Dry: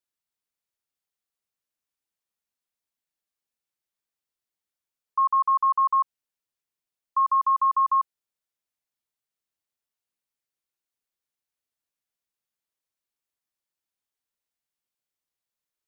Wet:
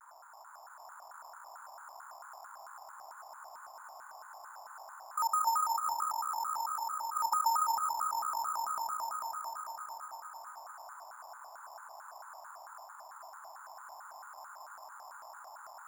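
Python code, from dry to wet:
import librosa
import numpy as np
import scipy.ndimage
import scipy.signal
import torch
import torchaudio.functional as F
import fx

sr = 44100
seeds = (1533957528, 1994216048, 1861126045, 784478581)

y = fx.env_lowpass_down(x, sr, base_hz=800.0, full_db=-23.0)
y = fx.over_compress(y, sr, threshold_db=-31.0, ratio=-1.0)
y = fx.dmg_noise_band(y, sr, seeds[0], low_hz=760.0, high_hz=1300.0, level_db=-57.0)
y = fx.echo_swell(y, sr, ms=111, loudest=5, wet_db=-5.0)
y = np.repeat(scipy.signal.resample_poly(y, 1, 6), 6)[:len(y)]
y = fx.vibrato_shape(y, sr, shape='square', rate_hz=4.5, depth_cents=250.0)
y = y * 10.0 ** (1.0 / 20.0)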